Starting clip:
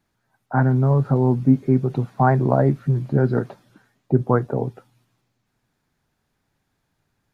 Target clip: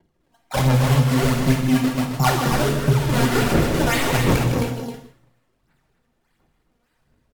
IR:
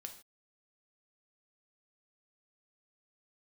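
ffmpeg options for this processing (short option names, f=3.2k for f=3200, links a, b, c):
-filter_complex "[0:a]asettb=1/sr,asplit=3[a][b][c];[a]atrim=end=2.884[d];[b]atrim=start=2.88:end=4.34,asetpts=PTS-STARTPTS,afade=t=in:d=0.004:c=qsin,afade=t=out:st=1.456:d=0.004:c=qsin,aeval=exprs='val(0)+0.5*0.112*sgn(val(0))':c=same[e];[c]atrim=start=4.336[f];[d][e]acrossfade=d=0.004:c1=hsin:c2=qsin[g];[g][f]acrossfade=d=0.004:c1=qsin:c2=hsin,equalizer=f=500:t=o:w=1:g=-5,equalizer=f=1k:t=o:w=1:g=3,equalizer=f=2k:t=o:w=1:g=9,acrusher=samples=33:mix=1:aa=0.000001:lfo=1:lforange=52.8:lforate=1.7,aphaser=in_gain=1:out_gain=1:delay=4.3:decay=0.71:speed=1.4:type=sinusoidal,asoftclip=type=tanh:threshold=-9dB,aecho=1:1:157.4|265.3:0.355|0.447[h];[1:a]atrim=start_sample=2205,asetrate=34839,aresample=44100[i];[h][i]afir=irnorm=-1:irlink=0,volume=1.5dB"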